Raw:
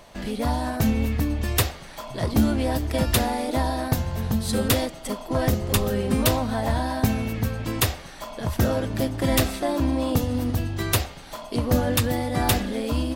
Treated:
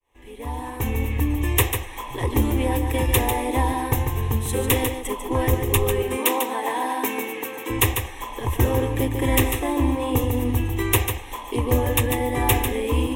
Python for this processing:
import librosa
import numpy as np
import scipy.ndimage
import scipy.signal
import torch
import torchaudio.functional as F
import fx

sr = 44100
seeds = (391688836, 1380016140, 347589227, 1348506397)

p1 = fx.fade_in_head(x, sr, length_s=1.55)
p2 = fx.bessel_highpass(p1, sr, hz=350.0, order=8, at=(6.02, 7.7))
p3 = fx.rider(p2, sr, range_db=3, speed_s=0.5)
p4 = p2 + (p3 * 10.0 ** (-1.5 / 20.0))
p5 = fx.fixed_phaser(p4, sr, hz=950.0, stages=8)
y = p5 + 10.0 ** (-7.0 / 20.0) * np.pad(p5, (int(146 * sr / 1000.0), 0))[:len(p5)]